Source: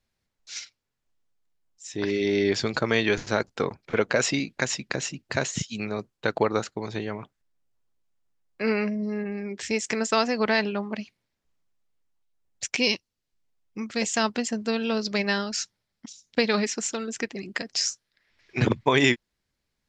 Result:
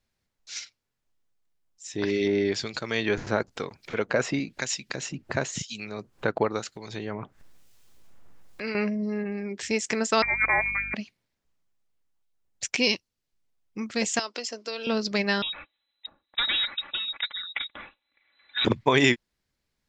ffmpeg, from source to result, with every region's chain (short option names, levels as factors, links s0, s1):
-filter_complex "[0:a]asettb=1/sr,asplit=3[s0][s1][s2];[s0]atrim=end=2.274[s3];[s1]atrim=start=2.27:end=8.75,asetpts=PTS-STARTPTS,afade=t=in:d=0.004:c=qsin,afade=t=out:st=6.476:d=0.004:c=qsin,acompressor=mode=upward:threshold=0.0562:ratio=2.5:attack=3.2:release=140:knee=2.83:detection=peak,acrossover=split=2100[s4][s5];[s4]aeval=exprs='val(0)*(1-0.7/2+0.7/2*cos(2*PI*1*n/s))':c=same[s6];[s5]aeval=exprs='val(0)*(1-0.7/2-0.7/2*cos(2*PI*1*n/s))':c=same[s7];[s6][s7]amix=inputs=2:normalize=0[s8];[s2]atrim=start=8.746[s9];[s3][s8]acrossfade=d=0.004:c1=hsin:c2=qsin[s10];[s10][s9]acrossfade=d=0.004:c1=qsin:c2=hsin,asettb=1/sr,asplit=3[s11][s12][s13];[s11]atrim=end=10.224[s14];[s12]atrim=start=10.22:end=10.94,asetpts=PTS-STARTPTS,afade=t=in:d=0.004:c=qsin,afade=t=out:st=0.716:d=0.004:c=qsin,lowpass=f=2200:t=q:w=0.5098,lowpass=f=2200:t=q:w=0.6013,lowpass=f=2200:t=q:w=0.9,lowpass=f=2200:t=q:w=2.563,afreqshift=-2600,aeval=exprs='val(0)+0.00708*(sin(2*PI*50*n/s)+sin(2*PI*2*50*n/s)/2+sin(2*PI*3*50*n/s)/3+sin(2*PI*4*50*n/s)/4+sin(2*PI*5*50*n/s)/5)':c=same[s15];[s13]atrim=start=10.936[s16];[s14][s15]acrossfade=d=0.004:c1=hsin:c2=qsin[s17];[s17][s16]acrossfade=d=0.004:c1=qsin:c2=hsin,asettb=1/sr,asplit=3[s18][s19][s20];[s18]atrim=end=14.194[s21];[s19]atrim=start=14.19:end=14.87,asetpts=PTS-STARTPTS,afade=t=in:d=0.004:c=qsin,afade=t=out:st=0.676:d=0.004:c=qsin,highpass=f=370:w=0.5412,highpass=f=370:w=1.3066,equalizer=f=420:t=q:w=4:g=-3,equalizer=f=800:t=q:w=4:g=-8,equalizer=f=1700:t=q:w=4:g=-7,equalizer=f=5200:t=q:w=4:g=8,lowpass=f=7400:w=0.5412,lowpass=f=7400:w=1.3066,acompressor=threshold=0.0398:ratio=4:attack=3.2:release=140:knee=1:detection=peak[s22];[s20]atrim=start=14.866[s23];[s21][s22]acrossfade=d=0.004:c1=hsin:c2=qsin[s24];[s24][s23]acrossfade=d=0.004:c1=qsin:c2=hsin,asettb=1/sr,asplit=3[s25][s26][s27];[s25]atrim=end=15.424[s28];[s26]atrim=start=15.42:end=18.65,asetpts=PTS-STARTPTS,afade=t=in:d=0.004:c=qsin,afade=t=out:st=3.226:d=0.004:c=qsin,aecho=1:1:3.5:0.66,atrim=end_sample=142443,volume=11.2,asoftclip=hard,volume=0.0891,lowpass=f=3400:t=q:w=0.5098,lowpass=f=3400:t=q:w=0.6013,lowpass=f=3400:t=q:w=0.9,lowpass=f=3400:t=q:w=2.563,afreqshift=-4000[s29];[s27]atrim=start=18.646[s30];[s28][s29]acrossfade=d=0.004:c1=hsin:c2=qsin[s31];[s31][s30]acrossfade=d=0.004:c1=qsin:c2=hsin"